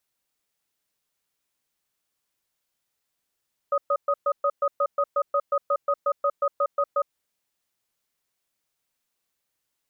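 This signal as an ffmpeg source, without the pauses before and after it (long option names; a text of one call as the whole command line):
ffmpeg -f lavfi -i "aevalsrc='0.0794*(sin(2*PI*569*t)+sin(2*PI*1250*t))*clip(min(mod(t,0.18),0.06-mod(t,0.18))/0.005,0,1)':duration=3.33:sample_rate=44100" out.wav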